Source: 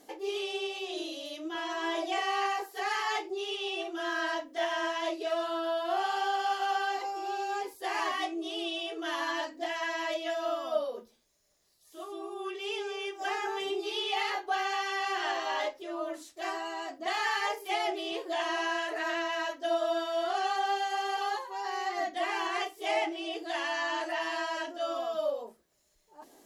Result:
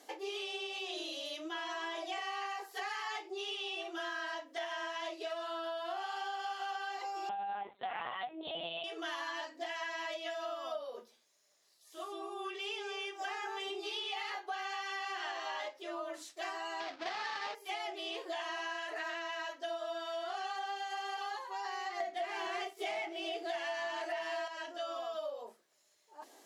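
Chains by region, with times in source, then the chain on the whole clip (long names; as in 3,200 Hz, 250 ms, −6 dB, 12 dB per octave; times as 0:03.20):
0:07.29–0:08.84: dynamic equaliser 690 Hz, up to +6 dB, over −48 dBFS, Q 2.7 + linear-prediction vocoder at 8 kHz pitch kept
0:16.80–0:17.55: each half-wave held at its own peak + Chebyshev low-pass filter 4,900 Hz, order 3
0:22.00–0:24.48: notch filter 1,100 Hz + leveller curve on the samples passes 2 + hollow resonant body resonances 200/380/680/2,200 Hz, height 11 dB, ringing for 85 ms
whole clip: meter weighting curve A; downward compressor 6 to 1, threshold −38 dBFS; level +1 dB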